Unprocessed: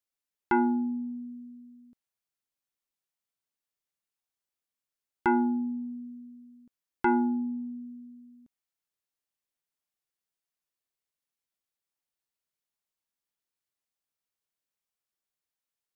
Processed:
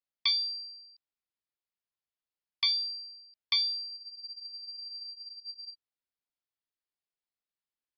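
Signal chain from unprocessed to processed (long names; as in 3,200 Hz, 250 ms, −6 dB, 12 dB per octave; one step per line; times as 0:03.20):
voice inversion scrambler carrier 2,600 Hz
wrong playback speed 7.5 ips tape played at 15 ips
frozen spectrum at 0:03.94, 1.78 s
level −2.5 dB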